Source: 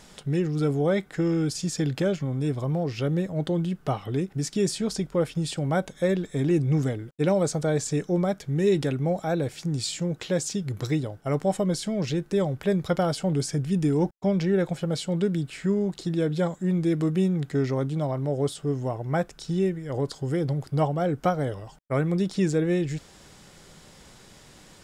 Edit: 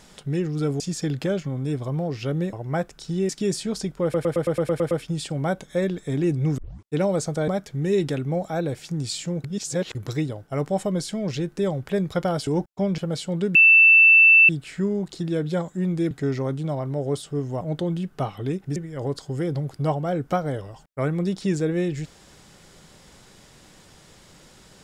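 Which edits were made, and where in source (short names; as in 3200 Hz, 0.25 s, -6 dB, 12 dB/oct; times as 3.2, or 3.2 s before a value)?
0.8–1.56 cut
3.29–4.44 swap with 18.93–19.69
5.18 stutter 0.11 s, 9 plays
6.85 tape start 0.33 s
7.75–8.22 cut
10.18–10.69 reverse
13.21–13.92 cut
14.43–14.78 cut
15.35 add tone 2660 Hz -9.5 dBFS 0.94 s
16.97–17.43 cut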